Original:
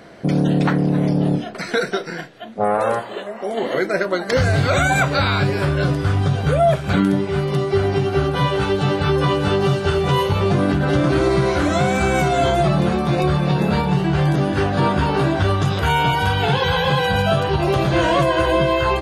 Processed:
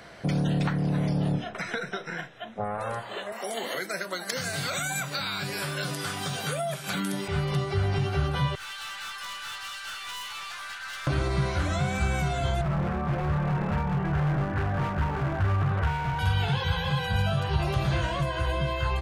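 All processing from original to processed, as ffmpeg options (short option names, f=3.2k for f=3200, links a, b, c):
-filter_complex "[0:a]asettb=1/sr,asplit=3[a][b][c];[a]atrim=end=1.324[d];[b]atrim=start=1.32:end=2.78,asetpts=PTS-STARTPTS,afade=t=in:d=0.004:c=qsin,afade=t=out:st=1.456:d=0.004:c=qsin,asuperstop=centerf=4500:order=12:qfactor=5.5,aemphasis=mode=reproduction:type=cd[e];[c]atrim=start=2.776[f];[d][e]acrossfade=d=0.004:c1=hsin:c2=qsin[g];[g][f]acrossfade=d=0.004:c1=qsin:c2=hsin,asettb=1/sr,asplit=3[h][i][j];[h]atrim=end=3.324[k];[i]atrim=start=3.32:end=7.28,asetpts=PTS-STARTPTS,afade=t=in:d=0.004:c=qsin,afade=t=out:st=3.956:d=0.004:c=qsin,highpass=f=180:w=0.5412,highpass=f=180:w=1.3066,aemphasis=mode=production:type=75fm[l];[j]atrim=start=7.276[m];[k][l]acrossfade=d=0.004:c1=hsin:c2=qsin[n];[n][m]acrossfade=d=0.004:c1=qsin:c2=hsin,asettb=1/sr,asplit=3[o][p][q];[o]atrim=end=8.554[r];[p]atrim=start=8.55:end=11.07,asetpts=PTS-STARTPTS,afade=t=in:d=0.004:c=qsin,afade=t=out:st=2.516:d=0.004:c=qsin,highpass=f=1.2k:w=0.5412,highpass=f=1.2k:w=1.3066,aeval=exprs='(tanh(50.1*val(0)+0.15)-tanh(0.15))/50.1':c=same[s];[q]atrim=start=11.066[t];[r][s]acrossfade=d=0.004:c1=hsin:c2=qsin[u];[u][t]acrossfade=d=0.004:c1=qsin:c2=hsin,asettb=1/sr,asplit=3[v][w][x];[v]atrim=end=12.614[y];[w]atrim=start=12.61:end=16.19,asetpts=PTS-STARTPTS,afade=t=in:d=0.004:c=qsin,afade=t=out:st=3.576:d=0.004:c=qsin,lowpass=f=1.9k:w=0.5412,lowpass=f=1.9k:w=1.3066,volume=16dB,asoftclip=hard,volume=-16dB[z];[x]atrim=start=16.186[aa];[y][z]acrossfade=d=0.004:c1=hsin:c2=qsin[ab];[ab][aa]acrossfade=d=0.004:c1=qsin:c2=hsin,equalizer=f=300:t=o:w=2.1:g=-10.5,acrossover=split=200[ac][ad];[ad]acompressor=threshold=-30dB:ratio=5[ae];[ac][ae]amix=inputs=2:normalize=0"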